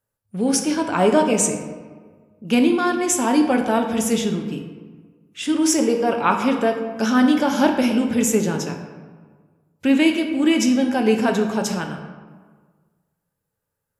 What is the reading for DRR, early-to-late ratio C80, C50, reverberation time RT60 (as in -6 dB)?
3.5 dB, 8.0 dB, 6.5 dB, 1.6 s